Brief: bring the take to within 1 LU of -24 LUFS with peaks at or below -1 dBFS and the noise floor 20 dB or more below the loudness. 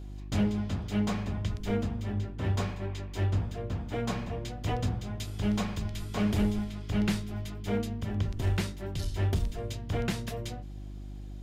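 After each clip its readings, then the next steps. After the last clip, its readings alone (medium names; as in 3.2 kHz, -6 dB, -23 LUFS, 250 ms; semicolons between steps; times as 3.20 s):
clipped samples 0.5%; clipping level -20.5 dBFS; hum 50 Hz; highest harmonic 350 Hz; hum level -38 dBFS; loudness -32.5 LUFS; peak level -20.5 dBFS; loudness target -24.0 LUFS
-> clip repair -20.5 dBFS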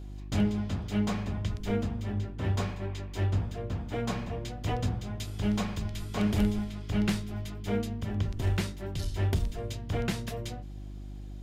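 clipped samples 0.0%; hum 50 Hz; highest harmonic 350 Hz; hum level -38 dBFS
-> de-hum 50 Hz, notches 7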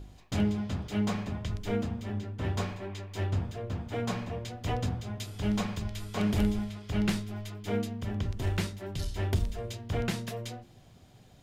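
hum not found; loudness -33.0 LUFS; peak level -11.5 dBFS; loudness target -24.0 LUFS
-> trim +9 dB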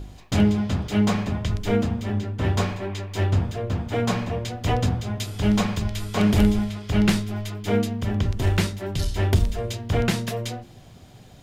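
loudness -24.0 LUFS; peak level -2.5 dBFS; noise floor -47 dBFS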